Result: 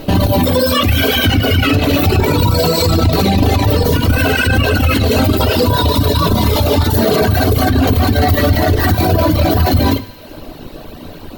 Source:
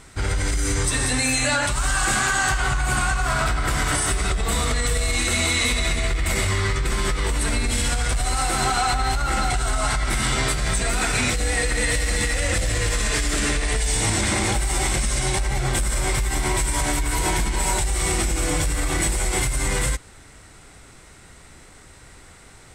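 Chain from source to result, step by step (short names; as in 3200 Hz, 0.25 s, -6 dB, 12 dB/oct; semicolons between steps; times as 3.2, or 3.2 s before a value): air absorption 52 m; reverb RT60 0.50 s, pre-delay 6 ms, DRR 3 dB; reverb removal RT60 1.2 s; ten-band EQ 125 Hz +7 dB, 250 Hz +10 dB, 1000 Hz -4 dB, 4000 Hz -11 dB, 8000 Hz +4 dB; speed mistake 7.5 ips tape played at 15 ips; thinning echo 76 ms, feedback 76%, high-pass 620 Hz, level -22 dB; maximiser +15.5 dB; gain -3 dB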